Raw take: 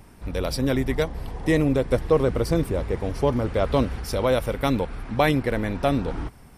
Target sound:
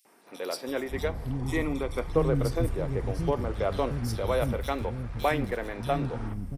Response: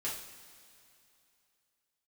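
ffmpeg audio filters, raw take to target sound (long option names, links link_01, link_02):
-filter_complex "[0:a]asettb=1/sr,asplit=3[link_01][link_02][link_03];[link_01]atrim=end=1.384[link_04];[link_02]atrim=start=1.38:end=2.07,asetpts=PTS-STARTPTS,afade=type=in:duration=0.004:curve=qsin,afade=type=out:start_time=0.686:duration=0.004:curve=qsin,aecho=1:1:0.9:0.51,atrim=end_sample=30429[link_05];[link_03]atrim=start=2.066[link_06];[link_04][link_05]acrossfade=duration=0.004:curve1=hsin:curve2=qsin[link_07];[link_07][link_06]acrossfade=duration=0.004:curve1=qsin:curve2=hsin,asettb=1/sr,asplit=3[link_08][link_09][link_10];[link_08]atrim=end=4.564[link_11];[link_09]atrim=start=4.56:end=5.69,asetpts=PTS-STARTPTS,afade=type=in:duration=0.004:curve=qsin,afade=type=out:start_time=1.126:duration=0.004:curve=qsin,aeval=exprs='sgn(val(0))*max(abs(val(0))-0.00891,0)':channel_layout=same[link_12];[link_10]atrim=start=5.686[link_13];[link_11][link_12]acrossfade=duration=0.004:curve1=hsin:curve2=qsin[link_14];[link_14][link_13]acrossfade=duration=0.004:curve1=qsin:curve2=hsin,acrossover=split=270|3400[link_15][link_16][link_17];[link_16]adelay=50[link_18];[link_15]adelay=680[link_19];[link_19][link_18][link_17]amix=inputs=3:normalize=0,asplit=2[link_20][link_21];[1:a]atrim=start_sample=2205,asetrate=79380,aresample=44100[link_22];[link_21][link_22]afir=irnorm=-1:irlink=0,volume=-8dB[link_23];[link_20][link_23]amix=inputs=2:normalize=0,volume=-5.5dB"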